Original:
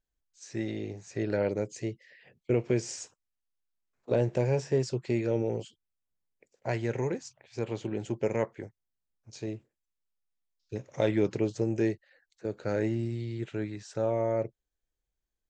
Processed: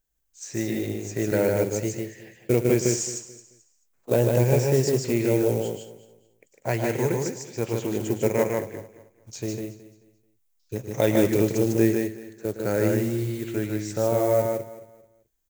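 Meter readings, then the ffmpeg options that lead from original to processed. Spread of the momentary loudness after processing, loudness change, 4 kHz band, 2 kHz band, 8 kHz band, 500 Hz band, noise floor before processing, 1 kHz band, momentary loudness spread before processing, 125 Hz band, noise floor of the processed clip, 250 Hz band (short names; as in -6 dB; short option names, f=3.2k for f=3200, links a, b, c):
15 LU, +7.0 dB, +8.5 dB, +7.0 dB, +13.5 dB, +7.0 dB, under -85 dBFS, +7.0 dB, 14 LU, +7.0 dB, -68 dBFS, +7.0 dB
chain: -filter_complex "[0:a]acrusher=bits=6:mode=log:mix=0:aa=0.000001,asplit=2[a][b];[b]aecho=0:1:218|436|654:0.168|0.0504|0.0151[c];[a][c]amix=inputs=2:normalize=0,aexciter=amount=2.6:drive=3.1:freq=6.2k,asplit=2[d][e];[e]aecho=0:1:110.8|151.6:0.251|0.708[f];[d][f]amix=inputs=2:normalize=0,volume=5dB"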